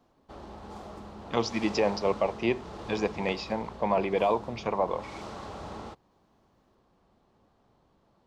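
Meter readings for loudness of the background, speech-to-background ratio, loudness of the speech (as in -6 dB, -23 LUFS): -43.0 LUFS, 13.5 dB, -29.5 LUFS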